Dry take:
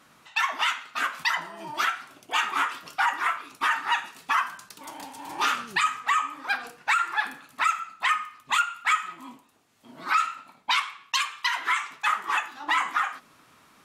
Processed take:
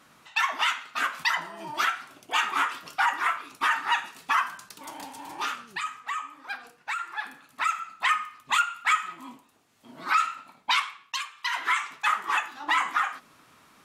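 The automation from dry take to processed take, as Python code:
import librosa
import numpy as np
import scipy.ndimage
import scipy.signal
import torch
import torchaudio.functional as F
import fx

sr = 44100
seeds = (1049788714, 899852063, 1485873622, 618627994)

y = fx.gain(x, sr, db=fx.line((5.17, 0.0), (5.57, -8.5), (7.05, -8.5), (7.96, 0.0), (10.83, 0.0), (11.34, -9.5), (11.56, 0.0)))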